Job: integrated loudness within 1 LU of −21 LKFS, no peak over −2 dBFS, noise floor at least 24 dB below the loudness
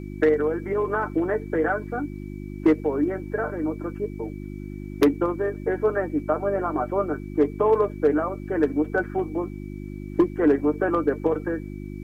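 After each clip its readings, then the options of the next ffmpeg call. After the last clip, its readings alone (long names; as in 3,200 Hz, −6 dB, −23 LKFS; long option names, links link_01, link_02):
mains hum 50 Hz; hum harmonics up to 350 Hz; level of the hum −32 dBFS; interfering tone 2,300 Hz; level of the tone −54 dBFS; integrated loudness −24.5 LKFS; sample peak −9.5 dBFS; target loudness −21.0 LKFS
→ -af "bandreject=frequency=50:width_type=h:width=4,bandreject=frequency=100:width_type=h:width=4,bandreject=frequency=150:width_type=h:width=4,bandreject=frequency=200:width_type=h:width=4,bandreject=frequency=250:width_type=h:width=4,bandreject=frequency=300:width_type=h:width=4,bandreject=frequency=350:width_type=h:width=4"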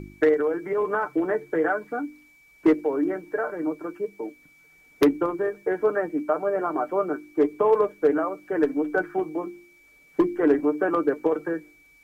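mains hum none found; interfering tone 2,300 Hz; level of the tone −54 dBFS
→ -af "bandreject=frequency=2300:width=30"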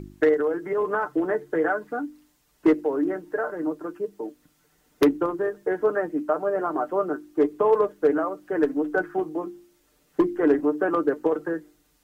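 interfering tone none found; integrated loudness −25.0 LKFS; sample peak −8.5 dBFS; target loudness −21.0 LKFS
→ -af "volume=4dB"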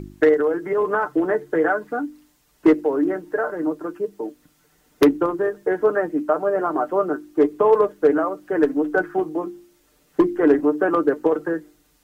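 integrated loudness −21.0 LKFS; sample peak −4.5 dBFS; background noise floor −61 dBFS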